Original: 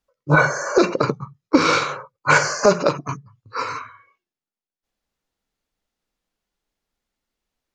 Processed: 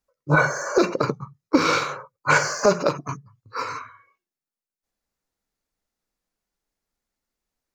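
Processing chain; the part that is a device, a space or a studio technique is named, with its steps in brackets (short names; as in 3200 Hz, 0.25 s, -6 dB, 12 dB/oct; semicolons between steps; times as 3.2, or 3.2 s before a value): exciter from parts (in parallel at -6 dB: HPF 2900 Hz 24 dB/oct + soft clip -38 dBFS, distortion -4 dB); on the sum: gain -3 dB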